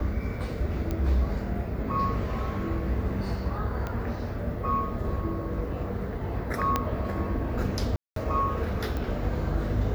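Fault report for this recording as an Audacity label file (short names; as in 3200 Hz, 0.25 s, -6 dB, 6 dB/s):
0.910000	0.910000	pop -18 dBFS
3.870000	3.870000	pop -19 dBFS
6.760000	6.760000	pop -10 dBFS
7.960000	8.160000	gap 0.203 s
8.970000	8.970000	pop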